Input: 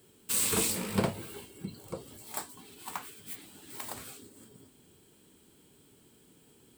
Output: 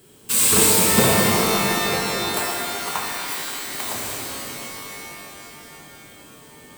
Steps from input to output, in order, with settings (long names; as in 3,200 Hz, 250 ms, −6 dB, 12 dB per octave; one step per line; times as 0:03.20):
0:03.12–0:03.61: Butterworth high-pass 260 Hz 96 dB per octave
reverb with rising layers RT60 3 s, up +12 semitones, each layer −2 dB, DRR −3.5 dB
level +8.5 dB